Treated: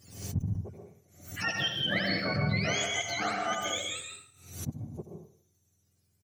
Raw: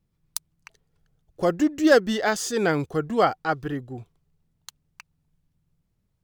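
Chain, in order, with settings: spectrum mirrored in octaves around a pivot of 980 Hz; in parallel at -11.5 dB: one-sided clip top -20 dBFS; on the sum: echo 79 ms -11.5 dB; reverse; compressor 4:1, threshold -30 dBFS, peak gain reduction 14.5 dB; reverse; bell 970 Hz -7.5 dB 0.25 oct; plate-style reverb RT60 0.52 s, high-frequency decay 0.95×, pre-delay 0.11 s, DRR 2.5 dB; backwards sustainer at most 93 dB/s

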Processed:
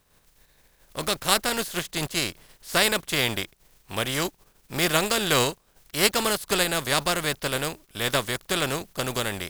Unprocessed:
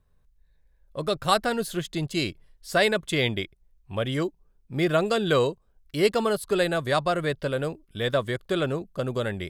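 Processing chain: spectral contrast lowered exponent 0.46

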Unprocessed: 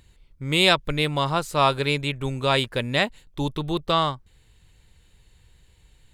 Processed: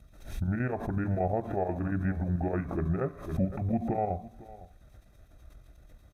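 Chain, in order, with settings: LPF 1900 Hz 24 dB/oct; expander -54 dBFS; HPF 42 Hz 24 dB/oct; compressor 2.5:1, threshold -28 dBFS, peak gain reduction 9.5 dB; limiter -26.5 dBFS, peak gain reduction 10.5 dB; chopper 8.3 Hz, depth 65%, duty 60%; added noise white -78 dBFS; pitch shift -7 st; echo 0.506 s -19 dB; reverb RT60 0.60 s, pre-delay 3 ms, DRR 12 dB; backwards sustainer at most 93 dB/s

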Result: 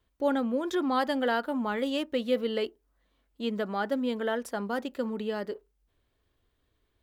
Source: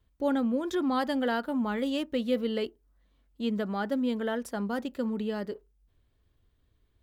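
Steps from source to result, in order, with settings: tone controls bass -9 dB, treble -2 dB; gain +2.5 dB

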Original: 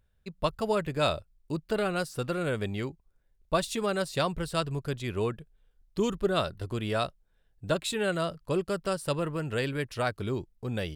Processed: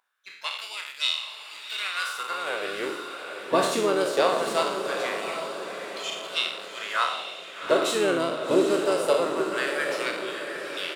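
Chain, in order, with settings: spectral trails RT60 0.73 s; LFO high-pass sine 0.21 Hz 290–3300 Hz; harmoniser -4 st -8 dB, +7 st -18 dB; diffused feedback echo 0.782 s, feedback 49%, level -7 dB

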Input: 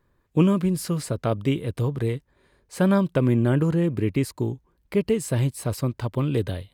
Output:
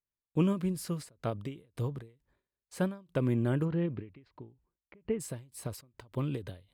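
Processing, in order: gate -56 dBFS, range -26 dB; 3.64–5.19 LPF 4000 Hz -> 2400 Hz 24 dB/oct; ending taper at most 160 dB/s; gain -8.5 dB

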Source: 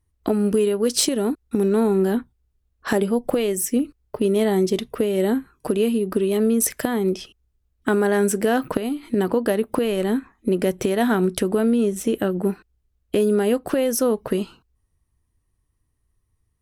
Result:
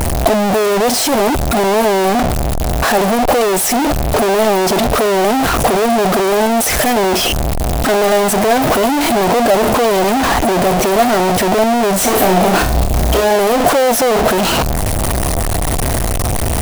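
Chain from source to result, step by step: infinite clipping; bell 690 Hz +12 dB 0.7 oct; 11.98–13.36 flutter echo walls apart 5.5 m, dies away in 0.34 s; gain +6.5 dB

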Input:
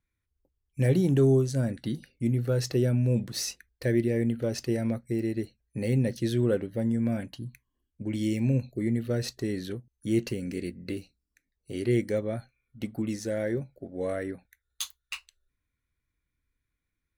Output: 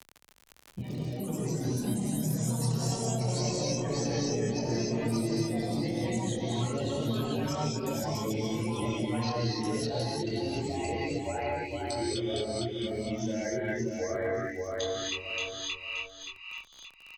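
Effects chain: per-bin expansion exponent 2; elliptic low-pass 6300 Hz, stop band 40 dB; notches 50/100/150/200/250/300/350 Hz; negative-ratio compressor -36 dBFS, ratio -0.5; chorus voices 6, 0.15 Hz, delay 25 ms, depth 1.9 ms; on a send: feedback echo 0.575 s, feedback 22%, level -4 dB; on the sum: non-linear reverb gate 0.32 s rising, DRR -5 dB; crackle 26/s -52 dBFS; echoes that change speed 0.154 s, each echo +4 st, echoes 3; three-band squash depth 70%

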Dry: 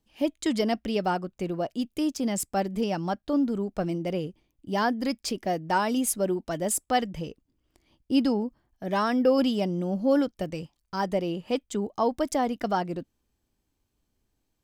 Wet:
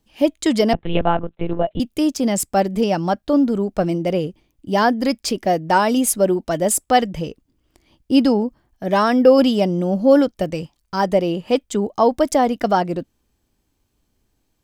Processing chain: dynamic EQ 580 Hz, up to +3 dB, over -37 dBFS, Q 1.7; 0.73–1.8 monotone LPC vocoder at 8 kHz 170 Hz; gain +8 dB

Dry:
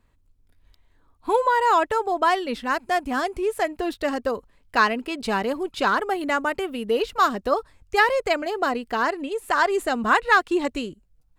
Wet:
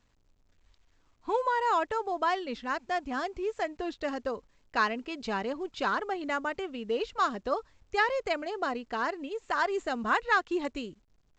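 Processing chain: gain -8 dB; A-law 128 kbps 16000 Hz

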